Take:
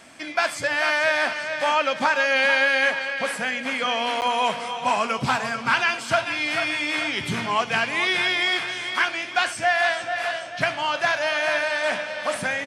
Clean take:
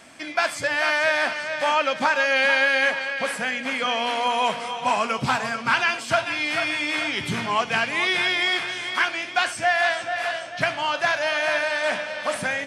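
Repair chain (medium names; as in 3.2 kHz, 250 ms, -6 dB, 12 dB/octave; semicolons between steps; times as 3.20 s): interpolate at 4.21 s, 9.4 ms; inverse comb 341 ms -22.5 dB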